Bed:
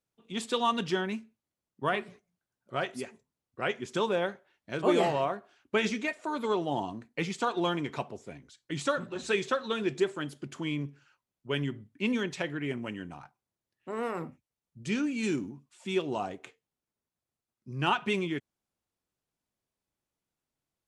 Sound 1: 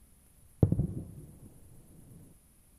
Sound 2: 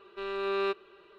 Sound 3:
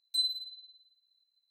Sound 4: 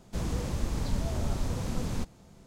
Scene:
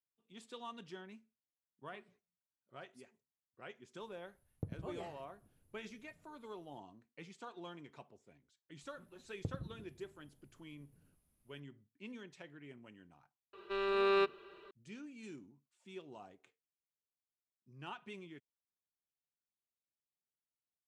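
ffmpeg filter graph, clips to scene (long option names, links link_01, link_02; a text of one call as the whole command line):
ffmpeg -i bed.wav -i cue0.wav -i cue1.wav -filter_complex "[1:a]asplit=2[link_01][link_02];[0:a]volume=-20dB[link_03];[link_01]atrim=end=2.78,asetpts=PTS-STARTPTS,volume=-17.5dB,afade=type=in:duration=0.004:curve=hsin,afade=type=out:start_time=2.776:duration=0.004:curve=hsin,adelay=4000[link_04];[link_02]atrim=end=2.78,asetpts=PTS-STARTPTS,volume=-16dB,afade=type=in:duration=0.004:curve=hsin,afade=type=out:start_time=2.776:duration=0.004:curve=hsin,adelay=388962S[link_05];[2:a]atrim=end=1.18,asetpts=PTS-STARTPTS,volume=-0.5dB,afade=type=in:duration=0.004:curve=hsin,afade=type=out:start_time=1.176:duration=0.004:curve=hsin,adelay=13530[link_06];[link_03][link_04][link_05][link_06]amix=inputs=4:normalize=0" out.wav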